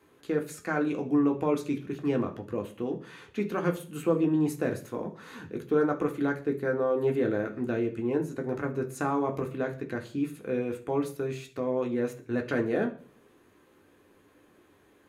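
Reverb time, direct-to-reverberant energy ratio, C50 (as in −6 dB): 0.45 s, 2.0 dB, 13.5 dB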